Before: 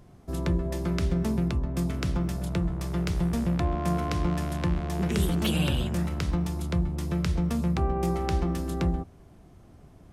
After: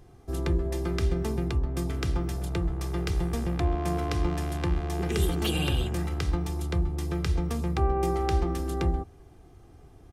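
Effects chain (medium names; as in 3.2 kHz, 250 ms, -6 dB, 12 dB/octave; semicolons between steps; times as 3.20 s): comb 2.5 ms, depth 55%; trim -1 dB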